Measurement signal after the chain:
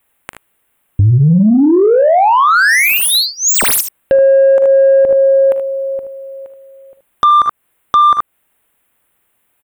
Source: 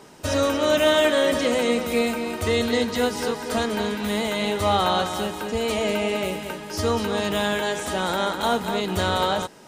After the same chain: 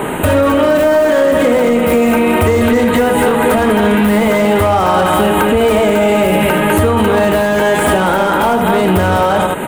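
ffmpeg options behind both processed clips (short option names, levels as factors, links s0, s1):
-filter_complex "[0:a]asuperstop=centerf=5300:order=4:qfactor=0.86,acrossover=split=1900[s0][s1];[s1]aeval=exprs='0.0158*(abs(mod(val(0)/0.0158+3,4)-2)-1)':c=same[s2];[s0][s2]amix=inputs=2:normalize=0,aecho=1:1:42|58|76:0.158|0.168|0.299,acompressor=threshold=0.0282:ratio=10,asoftclip=type=tanh:threshold=0.0422,alimiter=level_in=44.7:limit=0.891:release=50:level=0:latency=1,volume=0.631"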